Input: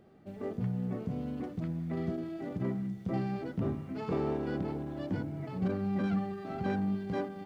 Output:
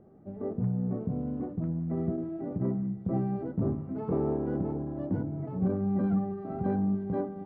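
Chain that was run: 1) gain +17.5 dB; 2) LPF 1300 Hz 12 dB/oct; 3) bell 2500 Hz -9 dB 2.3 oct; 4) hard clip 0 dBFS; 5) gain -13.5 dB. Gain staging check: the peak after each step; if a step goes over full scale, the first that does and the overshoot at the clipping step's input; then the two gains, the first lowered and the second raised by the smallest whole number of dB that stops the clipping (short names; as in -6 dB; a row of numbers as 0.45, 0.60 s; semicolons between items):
-4.0, -4.0, -4.5, -4.5, -18.0 dBFS; no overload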